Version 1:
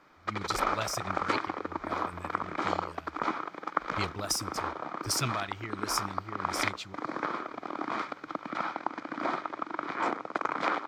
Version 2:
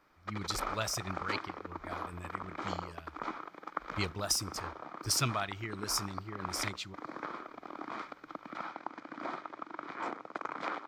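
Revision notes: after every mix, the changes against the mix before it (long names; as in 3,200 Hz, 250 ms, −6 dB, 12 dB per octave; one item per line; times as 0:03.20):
background −8.0 dB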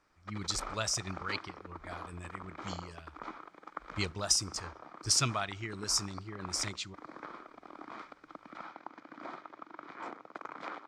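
speech: add low-pass with resonance 7,600 Hz, resonance Q 1.8
background −5.0 dB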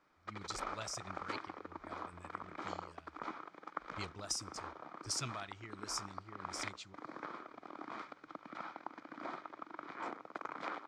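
speech −11.0 dB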